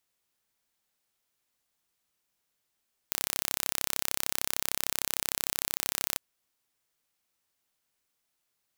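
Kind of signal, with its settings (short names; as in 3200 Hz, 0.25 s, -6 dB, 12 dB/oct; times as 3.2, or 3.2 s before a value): pulse train 33.2/s, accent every 0, -1.5 dBFS 3.07 s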